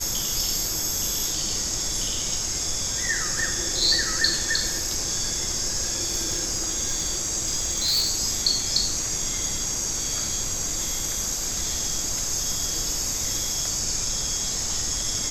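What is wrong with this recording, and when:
6.08–8.11 s: clipped -18.5 dBFS

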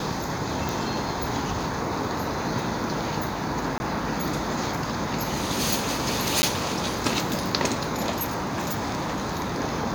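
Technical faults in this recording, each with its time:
0.69 s: pop
3.78–3.80 s: dropout 20 ms
6.42–6.43 s: dropout 10 ms
8.11–9.60 s: clipped -24 dBFS

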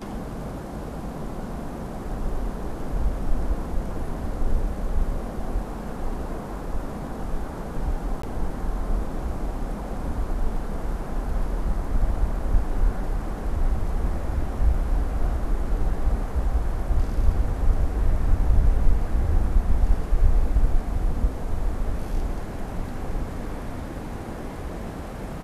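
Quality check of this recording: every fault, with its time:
8.22–8.23 s: dropout 14 ms

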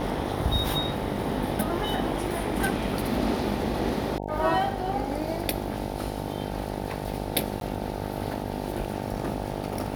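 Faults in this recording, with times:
buzz 50 Hz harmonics 18 -33 dBFS
crackle 56 per s -36 dBFS
7.60–7.61 s: dropout 12 ms

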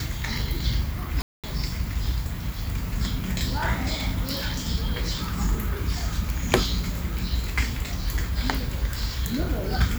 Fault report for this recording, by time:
1.22–1.44 s: dropout 217 ms

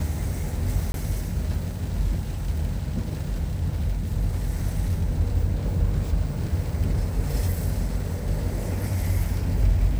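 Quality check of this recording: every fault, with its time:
0.92–0.94 s: dropout 22 ms

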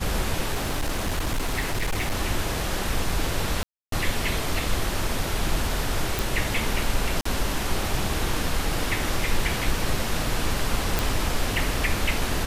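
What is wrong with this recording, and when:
0.53–2.18 s: clipped -21 dBFS
3.63–3.92 s: dropout 293 ms
6.19 s: pop
7.21–7.25 s: dropout 44 ms
10.99 s: pop

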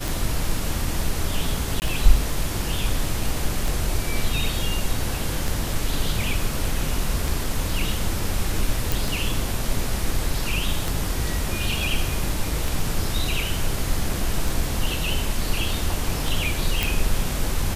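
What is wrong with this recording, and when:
tick 33 1/3 rpm
1.80–1.82 s: dropout 19 ms
8.92 s: pop
16.83 s: pop

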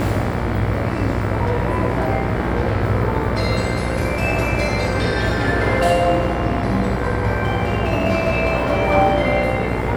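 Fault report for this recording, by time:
buzz 60 Hz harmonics 39 -24 dBFS

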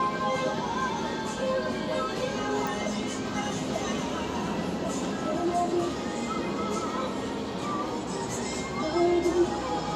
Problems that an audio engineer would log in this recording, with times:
2.67 s: pop

